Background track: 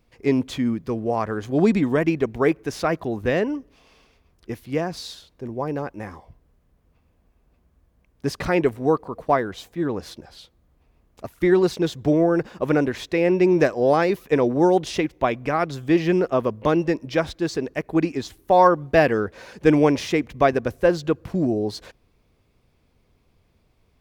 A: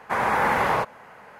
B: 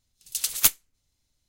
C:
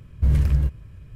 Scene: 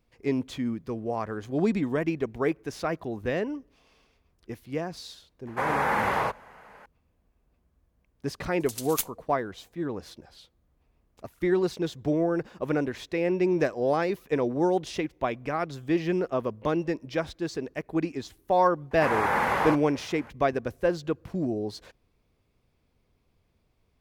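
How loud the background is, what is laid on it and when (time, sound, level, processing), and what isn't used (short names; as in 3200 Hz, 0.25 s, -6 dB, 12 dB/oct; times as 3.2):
background track -7 dB
5.47 add A -4 dB
8.34 add B -10.5 dB
18.91 add A -3.5 dB
not used: C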